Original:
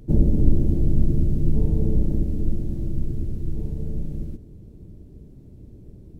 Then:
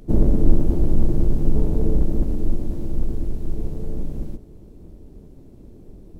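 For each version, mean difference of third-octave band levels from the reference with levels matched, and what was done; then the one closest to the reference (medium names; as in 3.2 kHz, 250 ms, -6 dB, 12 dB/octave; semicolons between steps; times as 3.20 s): 5.0 dB: octave divider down 1 oct, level -3 dB; peaking EQ 100 Hz -10.5 dB 2.2 oct; trim +5 dB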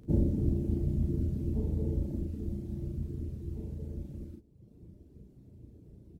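1.5 dB: reverb removal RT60 1.3 s; high-pass 51 Hz; on a send: early reflections 35 ms -3.5 dB, 50 ms -10 dB; on the sum: trim -6.5 dB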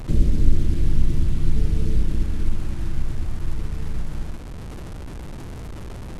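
13.0 dB: one-bit delta coder 64 kbps, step -30.5 dBFS; bass shelf 78 Hz +9 dB; in parallel at +1.5 dB: compression, threshold -32 dBFS, peak gain reduction 29 dB; on the sum: trim -6.5 dB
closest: second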